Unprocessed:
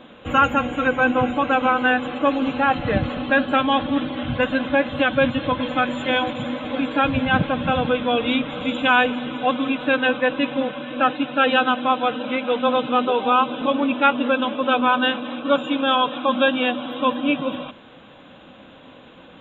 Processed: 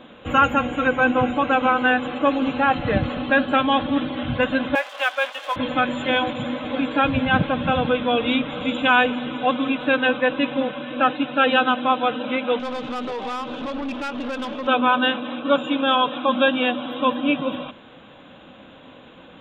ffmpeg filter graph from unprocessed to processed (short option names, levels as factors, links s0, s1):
-filter_complex "[0:a]asettb=1/sr,asplit=3[s0][s1][s2];[s0]atrim=end=4.754[s3];[s1]atrim=start=4.75:end=5.56,asetpts=PTS-STARTPTS,afade=t=in:d=0.004:c=qsin,afade=t=out:st=0.806:d=0.004:c=qsin,aeval=exprs='sgn(val(0))*max(abs(val(0))-0.0141,0)':c=same,highpass=f=640:w=0.5412,highpass=f=640:w=1.3066[s4];[s2]atrim=start=5.556[s5];[s3][s4]acrossfade=d=0.004:c1=hsin:c2=qsin[s6];[s6][s5]acrossfade=d=0.004:c1=qsin:c2=hsin,asettb=1/sr,asplit=3[s7][s8][s9];[s7]atrim=end=12.594[s10];[s8]atrim=start=12.59:end=14.67,asetpts=PTS-STARTPTS,afade=t=in:d=0.004:c=qsin,afade=t=out:st=2.076:d=0.004:c=qsin,acompressor=threshold=0.1:ratio=3:attack=3.2:release=140:knee=1:detection=peak,aeval=exprs='(tanh(15.8*val(0)+0.35)-tanh(0.35))/15.8':c=same[s11];[s9]atrim=start=14.666[s12];[s10][s11]acrossfade=d=0.004:c1=hsin:c2=qsin[s13];[s13][s12]acrossfade=d=0.004:c1=qsin:c2=hsin"